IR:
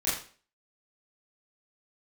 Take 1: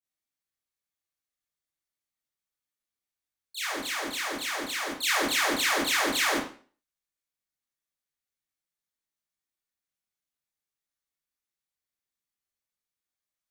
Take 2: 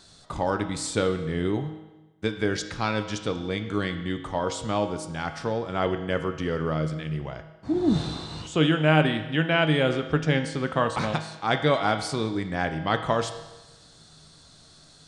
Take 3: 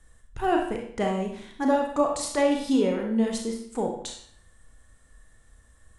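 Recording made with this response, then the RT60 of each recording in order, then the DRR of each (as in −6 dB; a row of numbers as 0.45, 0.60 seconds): 1; 0.45, 1.1, 0.60 seconds; −10.5, 7.0, 1.0 decibels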